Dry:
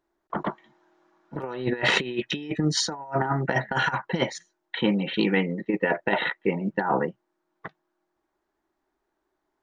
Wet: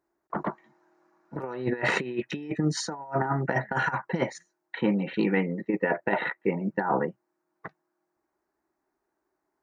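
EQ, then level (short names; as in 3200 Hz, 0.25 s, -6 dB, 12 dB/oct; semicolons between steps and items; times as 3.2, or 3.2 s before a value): dynamic EQ 5200 Hz, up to -5 dB, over -47 dBFS, Q 1.6; HPF 62 Hz; bell 3300 Hz -13.5 dB 0.45 oct; -1.5 dB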